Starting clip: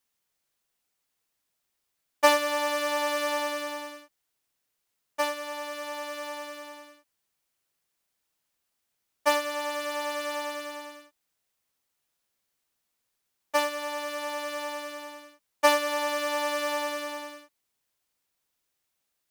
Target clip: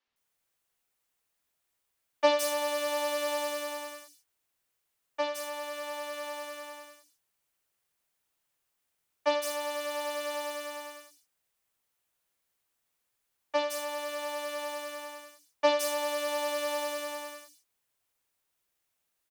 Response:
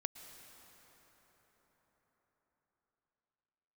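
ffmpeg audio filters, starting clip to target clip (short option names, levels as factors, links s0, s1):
-filter_complex "[0:a]acrossover=split=870|2600|5400[s0][s1][s2][s3];[s1]acompressor=threshold=0.00708:ratio=6[s4];[s0][s4][s2][s3]amix=inputs=4:normalize=0,acrossover=split=220|4900[s5][s6][s7];[s5]adelay=70[s8];[s7]adelay=160[s9];[s8][s6][s9]amix=inputs=3:normalize=0"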